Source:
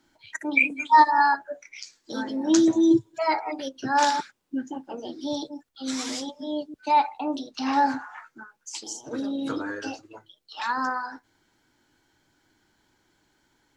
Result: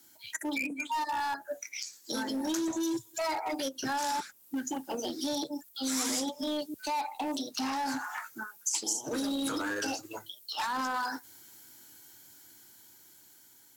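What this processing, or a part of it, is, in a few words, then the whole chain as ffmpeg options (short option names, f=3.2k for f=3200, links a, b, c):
FM broadcast chain: -filter_complex "[0:a]highpass=75,dynaudnorm=f=720:g=7:m=6dB,acrossover=split=770|2000[a][b][c];[a]acompressor=threshold=-28dB:ratio=4[d];[b]acompressor=threshold=-29dB:ratio=4[e];[c]acompressor=threshold=-44dB:ratio=4[f];[d][e][f]amix=inputs=3:normalize=0,aemphasis=mode=production:type=50fm,alimiter=limit=-22dB:level=0:latency=1:release=24,asoftclip=type=hard:threshold=-26dB,lowpass=f=15k:w=0.5412,lowpass=f=15k:w=1.3066,aemphasis=mode=production:type=50fm,volume=-2dB"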